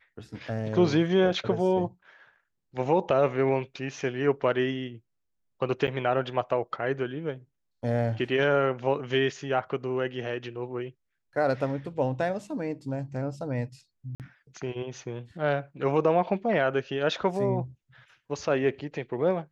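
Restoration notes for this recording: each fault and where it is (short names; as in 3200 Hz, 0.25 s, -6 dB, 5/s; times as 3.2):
5.87–5.88 gap 9.4 ms
14.15–14.2 gap 48 ms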